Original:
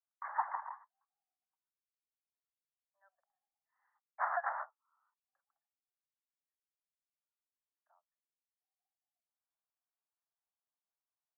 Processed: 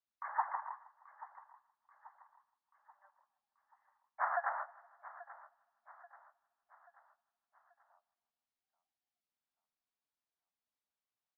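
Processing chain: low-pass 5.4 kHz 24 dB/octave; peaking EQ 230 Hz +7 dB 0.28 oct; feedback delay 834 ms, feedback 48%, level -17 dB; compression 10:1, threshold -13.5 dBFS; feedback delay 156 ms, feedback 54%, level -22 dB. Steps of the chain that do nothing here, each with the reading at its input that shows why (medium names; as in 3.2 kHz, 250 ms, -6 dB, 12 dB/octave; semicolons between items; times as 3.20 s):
low-pass 5.4 kHz: input has nothing above 2.2 kHz; peaking EQ 230 Hz: input has nothing below 510 Hz; compression, threshold -13.5 dBFS: peak at its input -20.0 dBFS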